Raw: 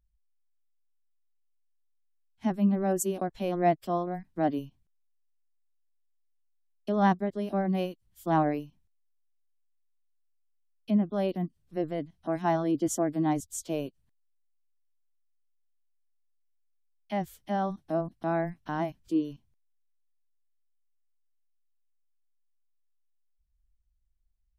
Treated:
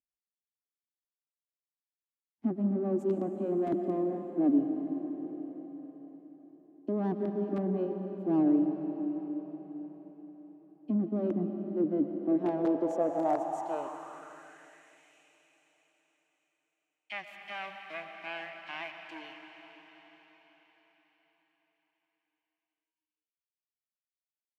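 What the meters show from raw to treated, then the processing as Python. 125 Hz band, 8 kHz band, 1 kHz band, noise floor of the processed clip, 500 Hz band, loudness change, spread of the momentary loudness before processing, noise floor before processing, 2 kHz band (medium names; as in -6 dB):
-6.0 dB, under -20 dB, -7.0 dB, under -85 dBFS, -1.5 dB, -2.0 dB, 9 LU, -71 dBFS, -2.5 dB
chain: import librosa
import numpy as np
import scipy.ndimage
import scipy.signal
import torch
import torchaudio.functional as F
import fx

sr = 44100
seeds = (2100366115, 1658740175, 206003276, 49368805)

y = fx.low_shelf(x, sr, hz=140.0, db=-7.5)
y = fx.leveller(y, sr, passes=3)
y = fx.rev_freeverb(y, sr, rt60_s=4.9, hf_ratio=1.0, predelay_ms=75, drr_db=4.5)
y = (np.mod(10.0 ** (11.5 / 20.0) * y + 1.0, 2.0) - 1.0) / 10.0 ** (11.5 / 20.0)
y = fx.filter_sweep_bandpass(y, sr, from_hz=290.0, to_hz=2400.0, start_s=12.18, end_s=15.15, q=3.7)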